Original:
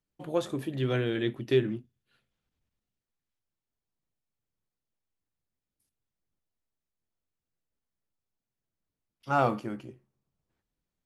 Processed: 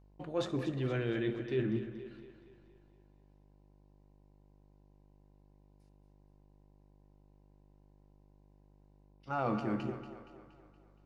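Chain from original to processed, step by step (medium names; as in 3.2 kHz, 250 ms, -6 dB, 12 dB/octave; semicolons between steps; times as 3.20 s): low-pass 4.7 kHz 12 dB/octave; band-stop 3.3 kHz, Q 9.3; reverse; compression 6:1, threshold -38 dBFS, peak gain reduction 17.5 dB; reverse; mains buzz 50 Hz, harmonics 21, -68 dBFS -7 dB/octave; two-band feedback delay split 320 Hz, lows 113 ms, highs 235 ms, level -11 dB; on a send at -15 dB: reverberation RT60 1.6 s, pre-delay 5 ms; on the sum: trim +6.5 dB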